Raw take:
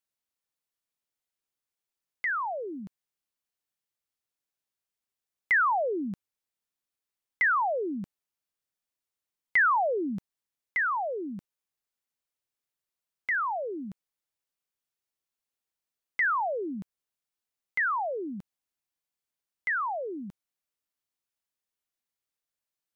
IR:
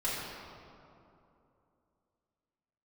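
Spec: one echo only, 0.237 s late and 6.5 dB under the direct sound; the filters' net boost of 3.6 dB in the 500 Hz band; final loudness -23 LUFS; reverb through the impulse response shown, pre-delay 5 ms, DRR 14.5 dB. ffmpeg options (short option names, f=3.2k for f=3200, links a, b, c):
-filter_complex "[0:a]equalizer=f=500:t=o:g=4.5,aecho=1:1:237:0.473,asplit=2[a][b];[1:a]atrim=start_sample=2205,adelay=5[c];[b][c]afir=irnorm=-1:irlink=0,volume=-21.5dB[d];[a][d]amix=inputs=2:normalize=0,volume=4.5dB"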